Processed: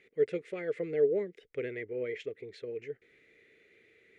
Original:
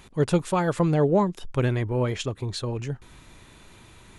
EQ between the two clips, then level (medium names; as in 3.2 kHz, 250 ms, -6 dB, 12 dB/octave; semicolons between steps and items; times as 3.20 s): two resonant band-passes 960 Hz, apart 2.2 oct; 0.0 dB